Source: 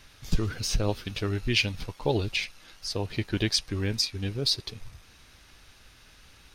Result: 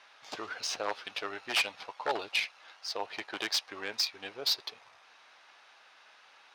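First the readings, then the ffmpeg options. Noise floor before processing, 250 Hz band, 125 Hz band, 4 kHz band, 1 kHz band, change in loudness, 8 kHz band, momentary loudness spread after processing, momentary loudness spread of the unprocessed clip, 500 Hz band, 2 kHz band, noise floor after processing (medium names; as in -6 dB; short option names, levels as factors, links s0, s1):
-56 dBFS, -16.5 dB, under -30 dB, -3.5 dB, +3.0 dB, -4.5 dB, -4.5 dB, 10 LU, 8 LU, -7.0 dB, -1.0 dB, -60 dBFS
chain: -af "aeval=exprs='0.106*(abs(mod(val(0)/0.106+3,4)-2)-1)':c=same,highpass=f=770:t=q:w=1.7,adynamicsmooth=sensitivity=2.5:basefreq=4300"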